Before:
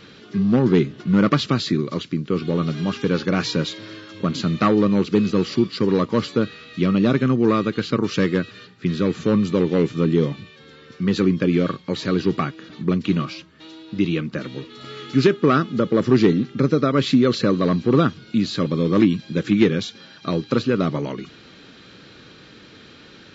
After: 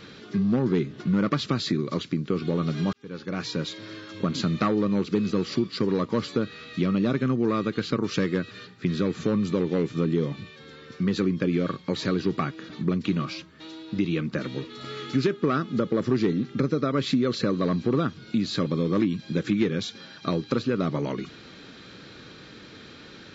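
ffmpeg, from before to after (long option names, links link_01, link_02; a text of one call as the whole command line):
ffmpeg -i in.wav -filter_complex "[0:a]asplit=2[link_01][link_02];[link_01]atrim=end=2.93,asetpts=PTS-STARTPTS,afade=type=out:start_time=2.926:duration=0.004:curve=hsin[link_03];[link_02]atrim=start=2.93,asetpts=PTS-STARTPTS,afade=type=in:duration=1.31[link_04];[link_03][link_04]concat=n=2:v=0:a=1,equalizer=frequency=2900:width_type=o:width=0.24:gain=-3.5,acompressor=threshold=-23dB:ratio=2.5" out.wav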